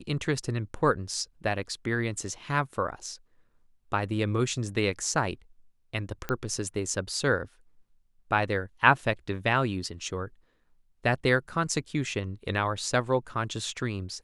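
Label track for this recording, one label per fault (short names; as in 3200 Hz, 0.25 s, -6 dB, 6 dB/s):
6.290000	6.290000	pop -16 dBFS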